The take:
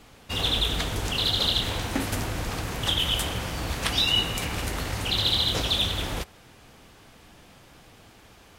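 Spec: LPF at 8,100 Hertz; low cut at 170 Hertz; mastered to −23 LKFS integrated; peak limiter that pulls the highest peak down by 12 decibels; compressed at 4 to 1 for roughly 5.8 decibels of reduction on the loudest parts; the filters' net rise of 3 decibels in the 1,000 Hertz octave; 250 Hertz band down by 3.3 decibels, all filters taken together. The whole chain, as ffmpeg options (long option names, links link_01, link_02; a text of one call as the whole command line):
ffmpeg -i in.wav -af "highpass=170,lowpass=8100,equalizer=frequency=250:width_type=o:gain=-3,equalizer=frequency=1000:width_type=o:gain=4,acompressor=threshold=-27dB:ratio=4,volume=10dB,alimiter=limit=-15dB:level=0:latency=1" out.wav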